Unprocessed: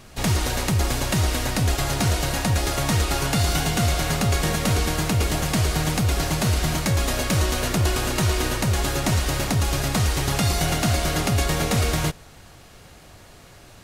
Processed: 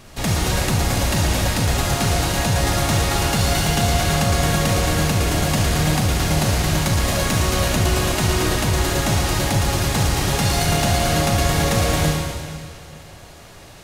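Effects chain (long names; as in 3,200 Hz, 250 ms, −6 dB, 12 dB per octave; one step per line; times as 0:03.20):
in parallel at −5.5 dB: hard clipping −23.5 dBFS, distortion −9 dB
on the sum: convolution reverb RT60 2.1 s, pre-delay 38 ms, DRR −1 dB
level −2 dB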